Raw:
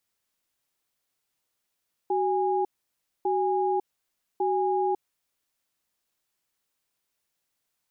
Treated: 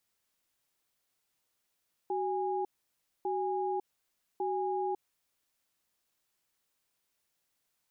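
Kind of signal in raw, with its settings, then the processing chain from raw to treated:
tone pair in a cadence 376 Hz, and 821 Hz, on 0.55 s, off 0.60 s, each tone −25 dBFS 2.85 s
brickwall limiter −26.5 dBFS

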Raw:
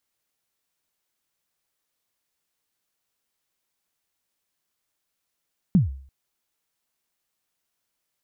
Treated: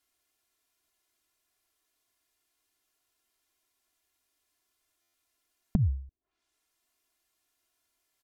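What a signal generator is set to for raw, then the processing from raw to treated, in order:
synth kick length 0.34 s, from 210 Hz, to 67 Hz, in 142 ms, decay 0.51 s, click off, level −10.5 dB
treble cut that deepens with the level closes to 350 Hz, closed at −35.5 dBFS
comb filter 2.9 ms, depth 80%
buffer that repeats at 0:05.01, times 10

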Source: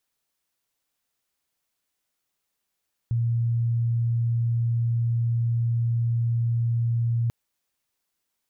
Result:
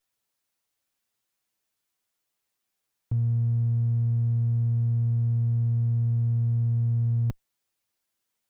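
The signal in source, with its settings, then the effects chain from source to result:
tone sine 117 Hz −20.5 dBFS 4.19 s
lower of the sound and its delayed copy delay 9.1 ms

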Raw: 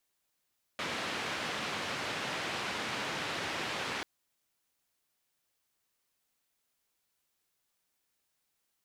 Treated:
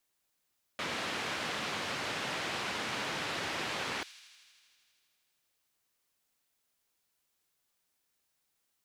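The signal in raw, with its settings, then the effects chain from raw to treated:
band-limited noise 120–2,800 Hz, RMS −36.5 dBFS 3.24 s
delay with a high-pass on its return 80 ms, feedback 79%, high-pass 3,600 Hz, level −11.5 dB

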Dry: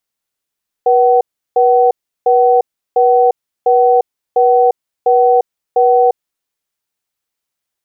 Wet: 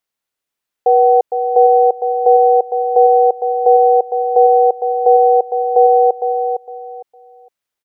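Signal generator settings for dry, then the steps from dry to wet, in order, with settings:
tone pair in a cadence 485 Hz, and 755 Hz, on 0.35 s, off 0.35 s, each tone −9.5 dBFS 5.34 s
bass and treble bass −4 dB, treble −4 dB
on a send: repeating echo 458 ms, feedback 23%, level −7.5 dB

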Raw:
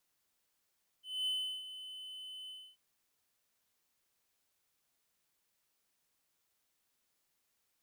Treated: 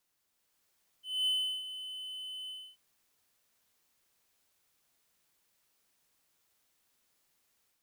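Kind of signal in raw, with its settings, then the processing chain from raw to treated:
note with an ADSR envelope triangle 3,030 Hz, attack 236 ms, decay 360 ms, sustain −13 dB, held 1.46 s, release 276 ms −29.5 dBFS
automatic gain control gain up to 5 dB

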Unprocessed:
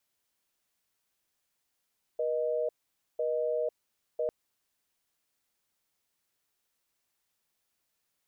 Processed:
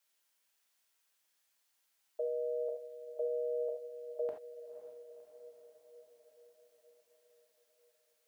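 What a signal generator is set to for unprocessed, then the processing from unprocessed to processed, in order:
call progress tone busy tone, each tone −30 dBFS 2.10 s
high-pass filter 720 Hz 6 dB per octave
feedback delay with all-pass diffusion 525 ms, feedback 62%, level −12.5 dB
reverb whose tail is shaped and stops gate 100 ms flat, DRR 1.5 dB

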